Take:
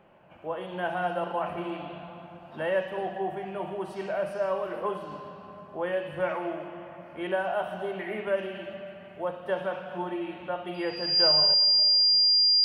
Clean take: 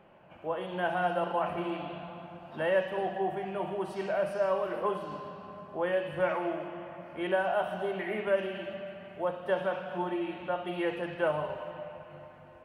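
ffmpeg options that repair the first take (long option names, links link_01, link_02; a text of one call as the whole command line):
ffmpeg -i in.wav -af "bandreject=frequency=4800:width=30,asetnsamples=nb_out_samples=441:pad=0,asendcmd='11.54 volume volume 6.5dB',volume=0dB" out.wav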